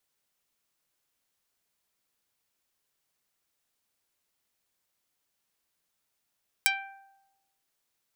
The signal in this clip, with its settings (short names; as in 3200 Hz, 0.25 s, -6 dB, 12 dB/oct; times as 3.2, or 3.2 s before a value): plucked string G5, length 0.99 s, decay 1.00 s, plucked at 0.18, dark